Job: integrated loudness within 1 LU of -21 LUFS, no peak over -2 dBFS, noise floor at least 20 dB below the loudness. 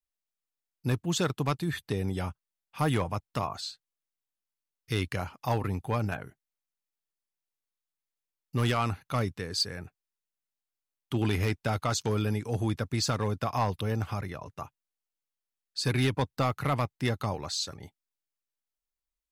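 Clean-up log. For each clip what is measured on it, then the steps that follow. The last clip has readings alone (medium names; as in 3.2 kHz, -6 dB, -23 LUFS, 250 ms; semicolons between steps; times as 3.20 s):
clipped samples 0.4%; clipping level -19.0 dBFS; loudness -31.0 LUFS; peak level -19.0 dBFS; loudness target -21.0 LUFS
-> clip repair -19 dBFS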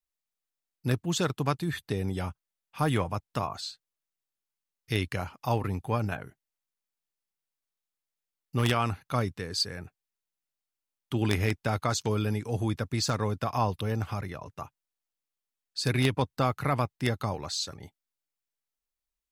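clipped samples 0.0%; loudness -30.5 LUFS; peak level -10.0 dBFS; loudness target -21.0 LUFS
-> trim +9.5 dB; peak limiter -2 dBFS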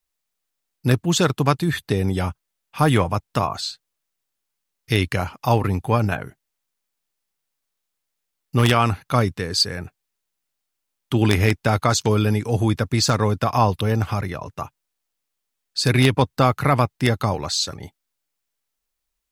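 loudness -21.0 LUFS; peak level -2.0 dBFS; noise floor -79 dBFS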